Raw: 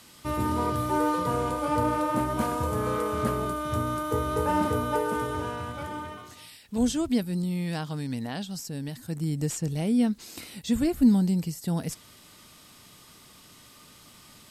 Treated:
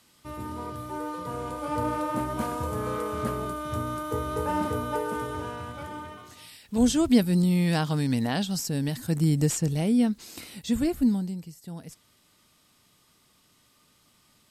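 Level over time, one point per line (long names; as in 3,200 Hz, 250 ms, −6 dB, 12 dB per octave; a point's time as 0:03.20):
0:01.09 −9 dB
0:01.87 −2.5 dB
0:06.17 −2.5 dB
0:07.25 +6.5 dB
0:09.25 +6.5 dB
0:10.18 −0.5 dB
0:10.92 −0.5 dB
0:11.44 −11 dB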